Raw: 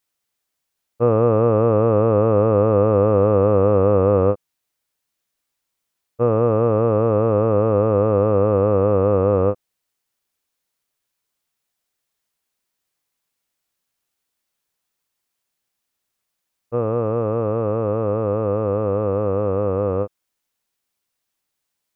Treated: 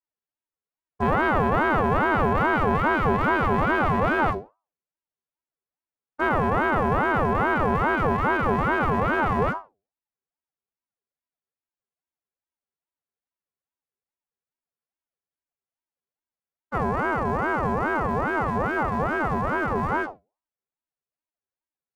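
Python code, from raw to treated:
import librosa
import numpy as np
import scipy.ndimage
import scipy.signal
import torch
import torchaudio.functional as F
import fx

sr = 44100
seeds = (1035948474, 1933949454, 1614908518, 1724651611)

y = scipy.signal.sosfilt(scipy.signal.butter(2, 1200.0, 'lowpass', fs=sr, output='sos'), x)
y = fx.low_shelf(y, sr, hz=80.0, db=9.0)
y = fx.hum_notches(y, sr, base_hz=50, count=6)
y = fx.leveller(y, sr, passes=2)
y = fx.robotise(y, sr, hz=309.0)
y = fx.rev_gated(y, sr, seeds[0], gate_ms=90, shape='falling', drr_db=10.0)
y = fx.ring_lfo(y, sr, carrier_hz=690.0, swing_pct=45, hz=2.4)
y = y * librosa.db_to_amplitude(-3.5)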